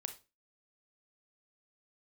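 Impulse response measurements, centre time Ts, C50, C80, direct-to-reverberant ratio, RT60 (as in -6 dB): 9 ms, 12.0 dB, 19.0 dB, 7.0 dB, 0.30 s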